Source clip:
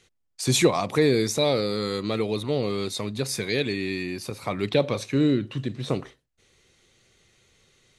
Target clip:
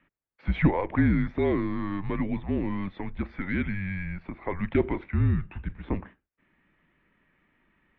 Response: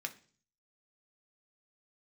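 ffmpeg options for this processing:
-af "highpass=frequency=160:width_type=q:width=0.5412,highpass=frequency=160:width_type=q:width=1.307,lowpass=frequency=2500:width_type=q:width=0.5176,lowpass=frequency=2500:width_type=q:width=0.7071,lowpass=frequency=2500:width_type=q:width=1.932,afreqshift=-190,aeval=exprs='0.422*(cos(1*acos(clip(val(0)/0.422,-1,1)))-cos(1*PI/2))+0.00531*(cos(6*acos(clip(val(0)/0.422,-1,1)))-cos(6*PI/2))+0.00473*(cos(8*acos(clip(val(0)/0.422,-1,1)))-cos(8*PI/2))':channel_layout=same,volume=-1.5dB"

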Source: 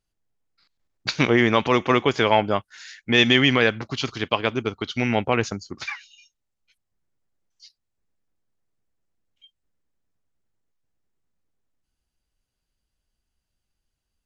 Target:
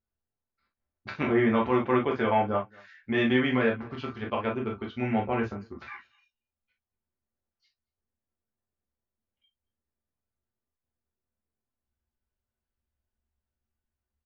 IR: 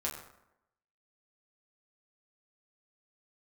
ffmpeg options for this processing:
-filter_complex "[0:a]lowpass=1900,asplit=2[link_01][link_02];[link_02]adelay=227.4,volume=-27dB,highshelf=frequency=4000:gain=-5.12[link_03];[link_01][link_03]amix=inputs=2:normalize=0[link_04];[1:a]atrim=start_sample=2205,atrim=end_sample=3087[link_05];[link_04][link_05]afir=irnorm=-1:irlink=0,volume=-8dB"

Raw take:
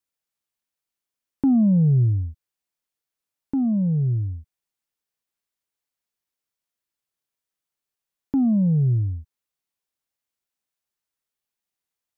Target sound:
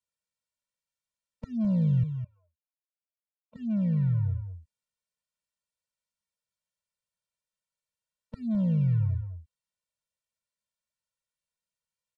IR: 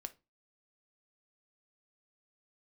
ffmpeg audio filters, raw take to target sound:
-filter_complex "[0:a]asplit=2[link_01][link_02];[link_02]acrusher=bits=4:mix=0:aa=0.5,volume=-8dB[link_03];[link_01][link_03]amix=inputs=2:normalize=0,acompressor=threshold=-26dB:ratio=2,asettb=1/sr,asplit=3[link_04][link_05][link_06];[link_04]atrim=end=2.034[link_07];[link_05]atrim=start=2.03:end=3.56,asetpts=PTS-STARTPTS,afade=type=in:duration=0.004:curve=qsin,afade=type=out:start_time=1.526:duration=0.004:curve=qsin,asplit=3[link_08][link_09][link_10];[link_08]bandpass=frequency=730:width_type=q:width=8,volume=0dB[link_11];[link_09]bandpass=frequency=1090:width_type=q:width=8,volume=-6dB[link_12];[link_10]bandpass=frequency=2440:width_type=q:width=8,volume=-9dB[link_13];[link_11][link_12][link_13]amix=inputs=3:normalize=0[link_14];[link_06]atrim=start=3.556[link_15];[link_07][link_14]acrossfade=duration=0.004:curve1=hsin:curve2=qsin[link_16];[link_16][link_15]acrossfade=duration=0.004:curve1=qsin:curve2=hsin,aecho=1:1:209:0.316,acrossover=split=130[link_17][link_18];[link_18]asoftclip=type=tanh:threshold=-21dB[link_19];[link_17][link_19]amix=inputs=2:normalize=0,aresample=22050,aresample=44100,afftfilt=real='re*eq(mod(floor(b*sr/1024/220),2),0)':imag='im*eq(mod(floor(b*sr/1024/220),2),0)':win_size=1024:overlap=0.75,volume=-1.5dB"

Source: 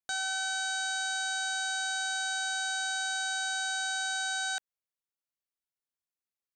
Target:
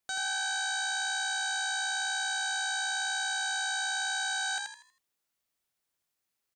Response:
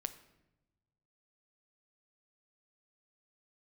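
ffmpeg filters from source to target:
-filter_complex "[0:a]alimiter=level_in=10dB:limit=-24dB:level=0:latency=1,volume=-10dB,asplit=6[link_01][link_02][link_03][link_04][link_05][link_06];[link_02]adelay=80,afreqshift=61,volume=-3.5dB[link_07];[link_03]adelay=160,afreqshift=122,volume=-12.6dB[link_08];[link_04]adelay=240,afreqshift=183,volume=-21.7dB[link_09];[link_05]adelay=320,afreqshift=244,volume=-30.9dB[link_10];[link_06]adelay=400,afreqshift=305,volume=-40dB[link_11];[link_01][link_07][link_08][link_09][link_10][link_11]amix=inputs=6:normalize=0,volume=8.5dB"

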